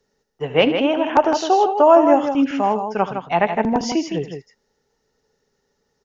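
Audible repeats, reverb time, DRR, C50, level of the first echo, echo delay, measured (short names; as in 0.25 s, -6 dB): 2, none, none, none, -15.0 dB, 75 ms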